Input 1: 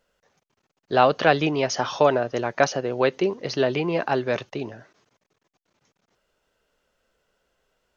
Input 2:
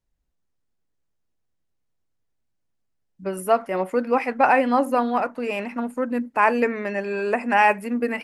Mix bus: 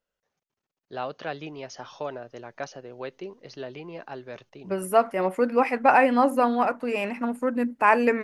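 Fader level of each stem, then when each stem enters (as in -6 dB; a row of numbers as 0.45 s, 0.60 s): -15.0 dB, -0.5 dB; 0.00 s, 1.45 s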